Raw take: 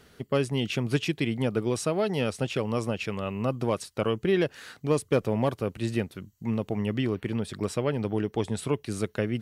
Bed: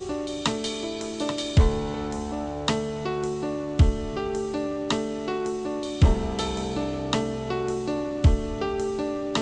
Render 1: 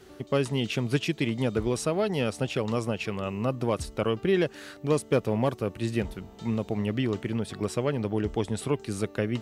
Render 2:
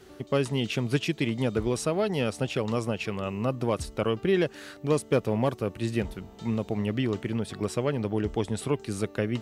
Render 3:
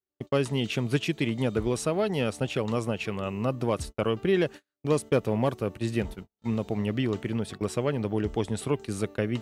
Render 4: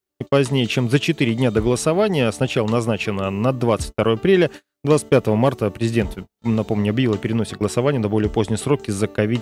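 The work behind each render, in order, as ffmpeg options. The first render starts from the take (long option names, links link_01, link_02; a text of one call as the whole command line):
ffmpeg -i in.wav -i bed.wav -filter_complex "[1:a]volume=-20.5dB[link_01];[0:a][link_01]amix=inputs=2:normalize=0" out.wav
ffmpeg -i in.wav -af anull out.wav
ffmpeg -i in.wav -af "agate=range=-46dB:threshold=-36dB:ratio=16:detection=peak,adynamicequalizer=threshold=0.00126:dfrequency=5100:dqfactor=4.1:tfrequency=5100:tqfactor=4.1:attack=5:release=100:ratio=0.375:range=2:mode=cutabove:tftype=bell" out.wav
ffmpeg -i in.wav -af "volume=9dB" out.wav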